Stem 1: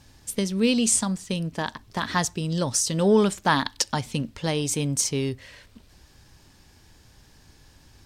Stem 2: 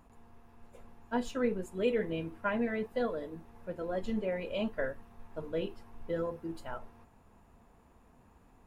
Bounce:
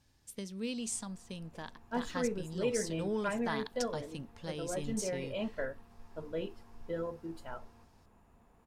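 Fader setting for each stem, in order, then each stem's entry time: −16.5, −3.0 decibels; 0.00, 0.80 seconds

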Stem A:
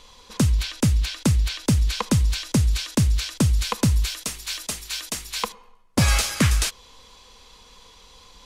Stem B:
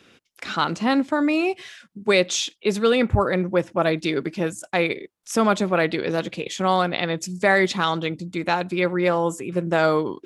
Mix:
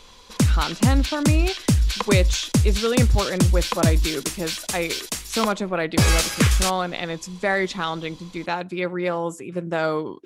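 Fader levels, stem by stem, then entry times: +1.0, −4.0 decibels; 0.00, 0.00 seconds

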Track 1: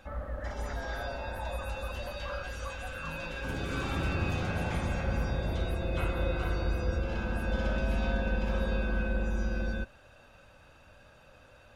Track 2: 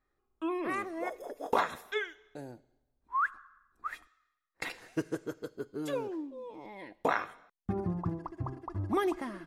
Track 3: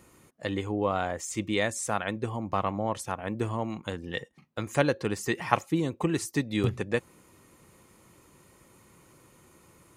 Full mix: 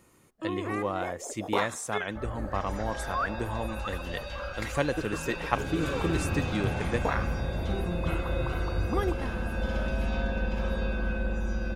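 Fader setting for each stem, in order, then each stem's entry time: +0.5, −1.0, −3.5 decibels; 2.10, 0.00, 0.00 seconds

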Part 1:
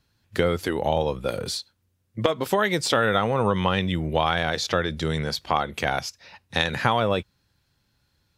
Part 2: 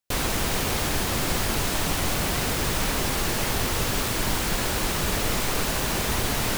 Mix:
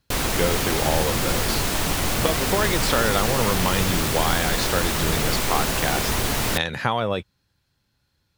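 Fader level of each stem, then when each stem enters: −1.5, +2.0 decibels; 0.00, 0.00 seconds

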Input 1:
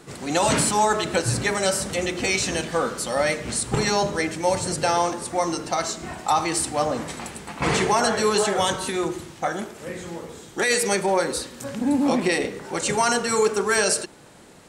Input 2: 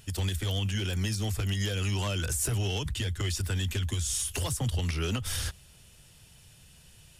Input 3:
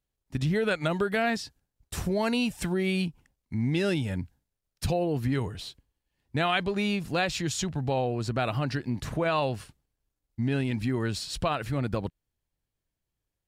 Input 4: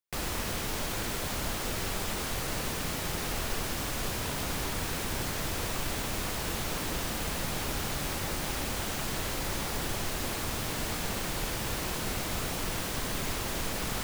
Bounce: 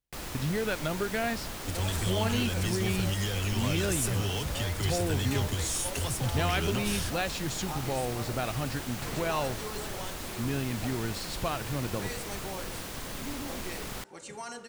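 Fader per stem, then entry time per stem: −20.0, −1.5, −4.5, −5.5 decibels; 1.40, 1.60, 0.00, 0.00 seconds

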